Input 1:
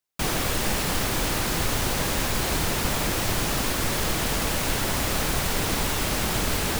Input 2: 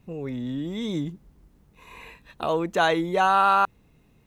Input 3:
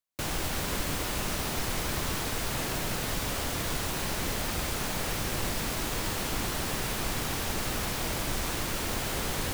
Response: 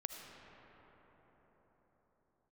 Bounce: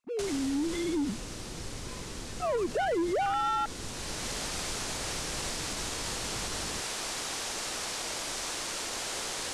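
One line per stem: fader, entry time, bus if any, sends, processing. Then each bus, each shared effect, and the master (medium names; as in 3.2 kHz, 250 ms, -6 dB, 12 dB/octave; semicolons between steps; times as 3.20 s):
-13.5 dB, 0.00 s, no send, steep low-pass 530 Hz 48 dB/octave
-7.0 dB, 0.00 s, no send, formants replaced by sine waves; tilt EQ -1.5 dB/octave; waveshaping leveller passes 2
-3.5 dB, 0.00 s, no send, Bessel low-pass 6.9 kHz, order 6; tone controls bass -15 dB, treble +10 dB; auto duck -9 dB, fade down 1.20 s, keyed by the second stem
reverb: none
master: peak limiter -24 dBFS, peak gain reduction 7.5 dB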